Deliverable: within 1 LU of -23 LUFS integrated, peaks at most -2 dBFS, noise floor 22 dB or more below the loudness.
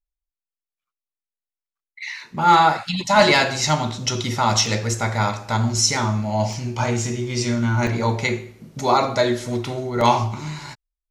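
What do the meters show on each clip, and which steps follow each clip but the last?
dropouts 4; longest dropout 1.7 ms; loudness -20.0 LUFS; peak level -3.0 dBFS; loudness target -23.0 LUFS
-> interpolate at 4.66/6.53/7.87/10.01 s, 1.7 ms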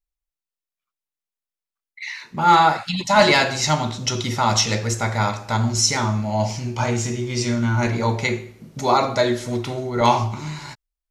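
dropouts 0; loudness -20.0 LUFS; peak level -3.0 dBFS; loudness target -23.0 LUFS
-> trim -3 dB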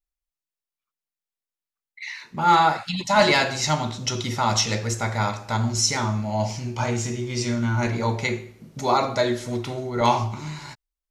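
loudness -23.0 LUFS; peak level -6.0 dBFS; noise floor -91 dBFS

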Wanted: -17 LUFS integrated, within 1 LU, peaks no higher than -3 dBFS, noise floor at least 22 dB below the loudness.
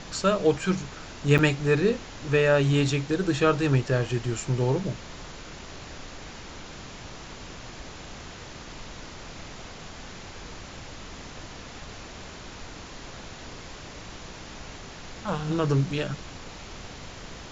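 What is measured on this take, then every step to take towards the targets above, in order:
dropouts 1; longest dropout 7.3 ms; noise floor -43 dBFS; noise floor target -47 dBFS; loudness -25.0 LUFS; peak level -7.5 dBFS; loudness target -17.0 LUFS
-> interpolate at 1.38 s, 7.3 ms; noise print and reduce 6 dB; trim +8 dB; peak limiter -3 dBFS

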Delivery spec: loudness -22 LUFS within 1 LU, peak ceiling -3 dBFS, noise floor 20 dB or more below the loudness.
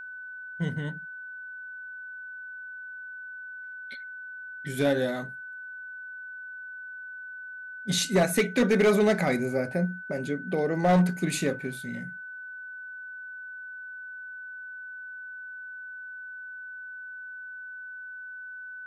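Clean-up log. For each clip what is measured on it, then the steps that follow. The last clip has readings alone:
clipped samples 0.4%; clipping level -16.0 dBFS; steady tone 1.5 kHz; tone level -38 dBFS; loudness -31.0 LUFS; peak level -16.0 dBFS; loudness target -22.0 LUFS
-> clip repair -16 dBFS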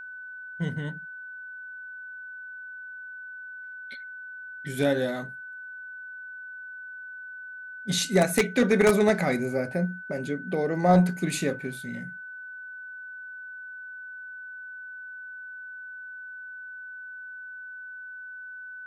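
clipped samples 0.0%; steady tone 1.5 kHz; tone level -38 dBFS
-> band-stop 1.5 kHz, Q 30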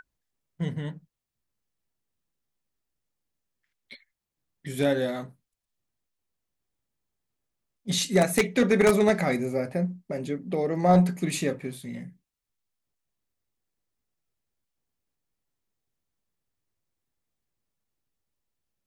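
steady tone not found; loudness -25.5 LUFS; peak level -7.0 dBFS; loudness target -22.0 LUFS
-> trim +3.5 dB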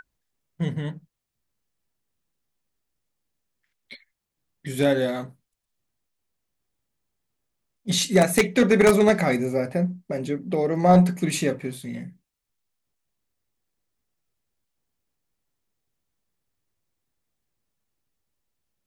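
loudness -22.0 LUFS; peak level -3.5 dBFS; noise floor -81 dBFS

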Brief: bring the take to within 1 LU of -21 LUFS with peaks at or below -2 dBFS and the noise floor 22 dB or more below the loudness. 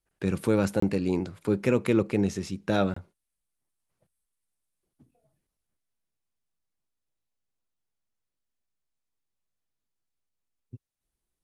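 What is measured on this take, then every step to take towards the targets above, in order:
dropouts 2; longest dropout 24 ms; loudness -27.0 LUFS; peak level -10.0 dBFS; loudness target -21.0 LUFS
-> interpolate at 0.80/2.94 s, 24 ms; trim +6 dB

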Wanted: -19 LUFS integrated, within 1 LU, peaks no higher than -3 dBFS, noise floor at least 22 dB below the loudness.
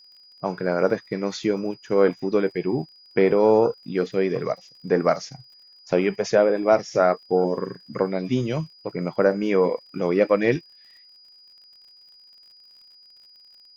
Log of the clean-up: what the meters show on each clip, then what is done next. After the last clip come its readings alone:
tick rate 49 per s; steady tone 4.9 kHz; tone level -49 dBFS; loudness -23.0 LUFS; peak level -4.5 dBFS; loudness target -19.0 LUFS
-> de-click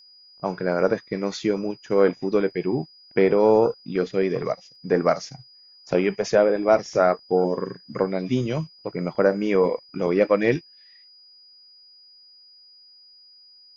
tick rate 0.36 per s; steady tone 4.9 kHz; tone level -49 dBFS
-> band-stop 4.9 kHz, Q 30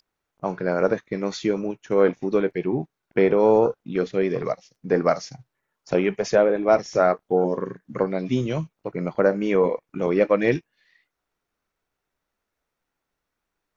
steady tone not found; loudness -23.0 LUFS; peak level -4.5 dBFS; loudness target -19.0 LUFS
-> trim +4 dB; peak limiter -3 dBFS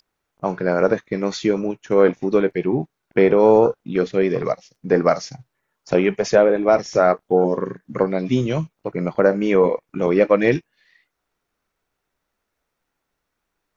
loudness -19.5 LUFS; peak level -3.0 dBFS; noise floor -78 dBFS

